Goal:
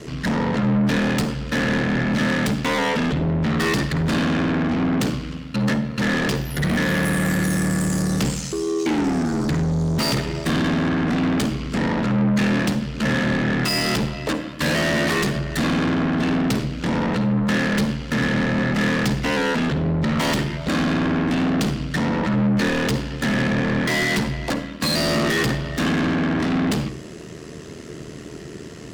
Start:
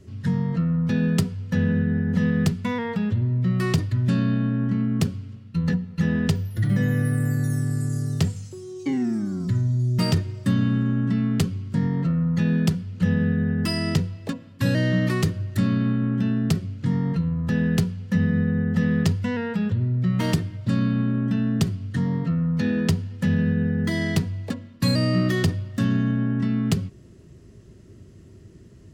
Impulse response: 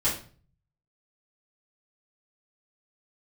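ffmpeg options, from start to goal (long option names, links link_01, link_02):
-filter_complex "[0:a]aeval=exprs='val(0)*sin(2*PI*39*n/s)':channel_layout=same,asplit=2[link_01][link_02];[link_02]highpass=frequency=720:poles=1,volume=36dB,asoftclip=type=tanh:threshold=-9dB[link_03];[link_01][link_03]amix=inputs=2:normalize=0,lowpass=frequency=6000:poles=1,volume=-6dB,asplit=2[link_04][link_05];[1:a]atrim=start_sample=2205,adelay=48[link_06];[link_05][link_06]afir=irnorm=-1:irlink=0,volume=-23dB[link_07];[link_04][link_07]amix=inputs=2:normalize=0,volume=-4.5dB"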